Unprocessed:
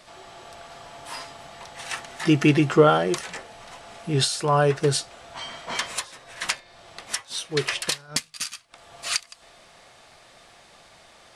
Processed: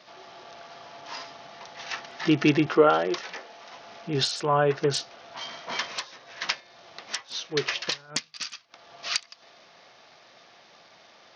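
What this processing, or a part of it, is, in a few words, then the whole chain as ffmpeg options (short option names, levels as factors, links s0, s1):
Bluetooth headset: -filter_complex "[0:a]asettb=1/sr,asplit=3[s0][s1][s2];[s0]atrim=end=2.664[s3];[s1]atrim=start=2.66:end=3.73,asetpts=PTS-STARTPTS,afade=t=in:d=0.004:c=qsin,afade=t=out:st=1.066:d=0.004:c=qsin,highpass=240[s4];[s2]atrim=start=3.726[s5];[s3][s4]acrossfade=d=0.004:c1=hsin:c2=qsin[s6];[s6][s5]acrossfade=d=0.004:c1=qsin:c2=hsin,highpass=170,aresample=16000,aresample=44100,volume=0.794" -ar 48000 -c:a sbc -b:a 64k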